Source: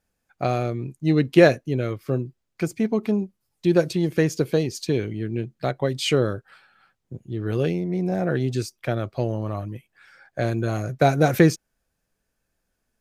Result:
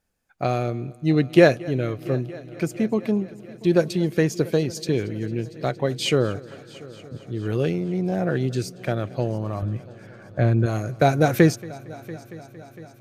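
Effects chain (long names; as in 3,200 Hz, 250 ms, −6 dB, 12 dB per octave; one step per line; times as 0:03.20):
0:09.62–0:10.66: bass and treble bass +8 dB, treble −13 dB
echo machine with several playback heads 229 ms, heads first and third, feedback 69%, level −22 dB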